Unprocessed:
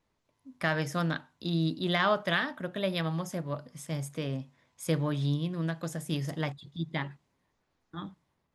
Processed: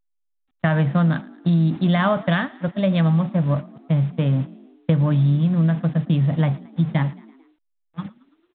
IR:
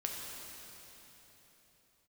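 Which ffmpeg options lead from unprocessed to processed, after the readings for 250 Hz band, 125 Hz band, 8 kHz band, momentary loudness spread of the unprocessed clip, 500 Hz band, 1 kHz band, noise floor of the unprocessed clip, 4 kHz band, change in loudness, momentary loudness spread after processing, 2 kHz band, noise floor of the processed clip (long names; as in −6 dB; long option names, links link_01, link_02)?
+13.0 dB, +14.5 dB, below −35 dB, 13 LU, +7.0 dB, +6.0 dB, −78 dBFS, 0.0 dB, +11.5 dB, 9 LU, +3.5 dB, −72 dBFS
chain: -filter_complex "[0:a]aeval=exprs='val(0)+0.5*0.0112*sgn(val(0))':channel_layout=same,equalizer=frequency=380:width=1.9:gain=-13.5,acontrast=32,tiltshelf=frequency=830:gain=8.5,agate=range=-25dB:threshold=-24dB:ratio=16:detection=peak,acrusher=bits=7:mix=0:aa=0.5,highpass=100,acompressor=threshold=-20dB:ratio=8,asplit=2[link_01][link_02];[link_02]asplit=4[link_03][link_04][link_05][link_06];[link_03]adelay=111,afreqshift=41,volume=-22dB[link_07];[link_04]adelay=222,afreqshift=82,volume=-27dB[link_08];[link_05]adelay=333,afreqshift=123,volume=-32.1dB[link_09];[link_06]adelay=444,afreqshift=164,volume=-37.1dB[link_10];[link_07][link_08][link_09][link_10]amix=inputs=4:normalize=0[link_11];[link_01][link_11]amix=inputs=2:normalize=0,volume=5.5dB" -ar 8000 -c:a pcm_alaw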